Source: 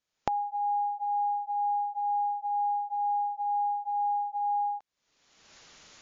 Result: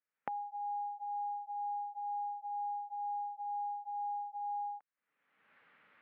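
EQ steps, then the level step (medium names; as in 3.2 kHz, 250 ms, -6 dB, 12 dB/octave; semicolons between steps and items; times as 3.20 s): distance through air 270 m; cabinet simulation 190–2000 Hz, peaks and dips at 360 Hz -8 dB, 680 Hz -6 dB, 980 Hz -4 dB; tilt shelf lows -7 dB, about 1.4 kHz; -2.0 dB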